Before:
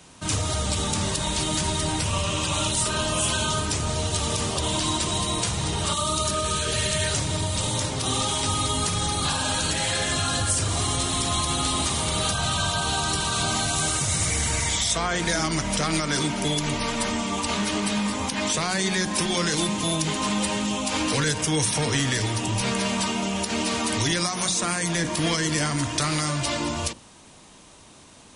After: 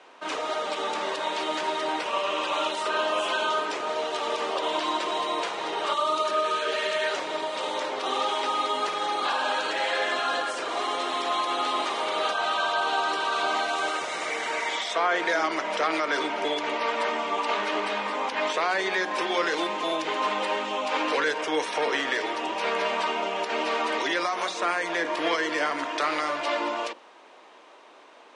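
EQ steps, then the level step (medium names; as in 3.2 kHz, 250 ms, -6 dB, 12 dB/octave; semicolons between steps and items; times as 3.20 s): high-pass 390 Hz 24 dB/octave; low-pass 2.3 kHz 12 dB/octave; +3.5 dB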